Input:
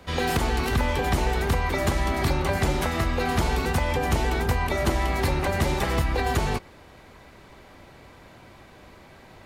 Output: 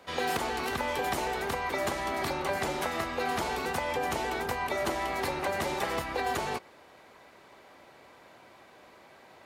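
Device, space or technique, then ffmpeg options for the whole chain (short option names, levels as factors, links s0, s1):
filter by subtraction: -filter_complex "[0:a]asettb=1/sr,asplit=3[s0][s1][s2];[s0]atrim=end=0.874[s3];[s1]atrim=start=0.87:end=1.28,asetpts=PTS-STARTPTS,afade=t=in:d=0.004:c=qsin,afade=t=out:st=0.406:d=0.004:c=qsin,highshelf=f=7900:g=5[s4];[s2]atrim=start=1.276[s5];[s3][s4]acrossfade=d=0.004:c1=hsin:c2=qsin[s6];[s6][s5]acrossfade=d=0.004:c1=qsin:c2=hsin,asplit=2[s7][s8];[s8]lowpass=620,volume=-1[s9];[s7][s9]amix=inputs=2:normalize=0,volume=0.562"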